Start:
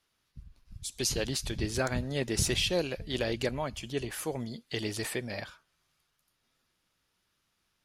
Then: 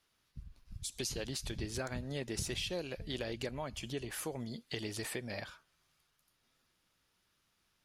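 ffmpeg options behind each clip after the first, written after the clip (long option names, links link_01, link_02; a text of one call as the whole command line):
ffmpeg -i in.wav -af "acompressor=threshold=-38dB:ratio=3" out.wav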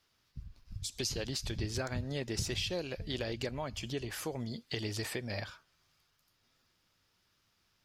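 ffmpeg -i in.wav -af "equalizer=frequency=100:width_type=o:width=0.33:gain=7,equalizer=frequency=5000:width_type=o:width=0.33:gain=4,equalizer=frequency=10000:width_type=o:width=0.33:gain=-8,volume=2dB" out.wav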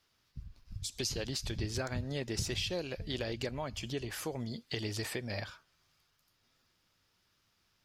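ffmpeg -i in.wav -af anull out.wav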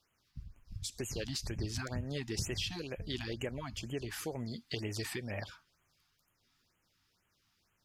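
ffmpeg -i in.wav -af "afftfilt=real='re*(1-between(b*sr/1024,450*pow(4700/450,0.5+0.5*sin(2*PI*2.1*pts/sr))/1.41,450*pow(4700/450,0.5+0.5*sin(2*PI*2.1*pts/sr))*1.41))':imag='im*(1-between(b*sr/1024,450*pow(4700/450,0.5+0.5*sin(2*PI*2.1*pts/sr))/1.41,450*pow(4700/450,0.5+0.5*sin(2*PI*2.1*pts/sr))*1.41))':win_size=1024:overlap=0.75,volume=-1dB" out.wav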